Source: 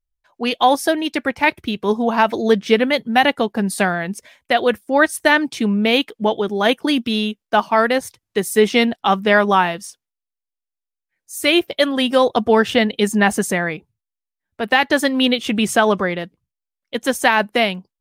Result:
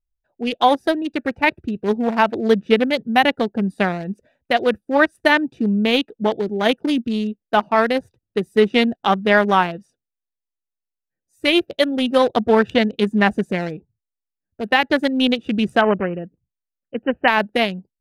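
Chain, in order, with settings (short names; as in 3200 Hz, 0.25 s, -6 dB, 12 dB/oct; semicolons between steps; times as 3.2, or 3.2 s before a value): Wiener smoothing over 41 samples; 15.81–17.28 brick-wall FIR low-pass 3100 Hz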